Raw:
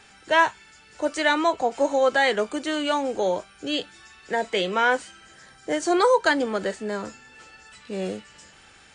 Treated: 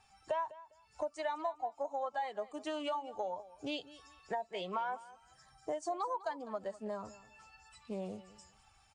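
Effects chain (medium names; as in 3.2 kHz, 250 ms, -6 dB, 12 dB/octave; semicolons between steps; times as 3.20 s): expander on every frequency bin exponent 1.5; high-order bell 850 Hz +14 dB 1.2 oct; compression 6:1, threshold -36 dBFS, peak gain reduction 29.5 dB; feedback delay 202 ms, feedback 21%, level -17.5 dB; loudspeaker Doppler distortion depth 0.1 ms; trim -1 dB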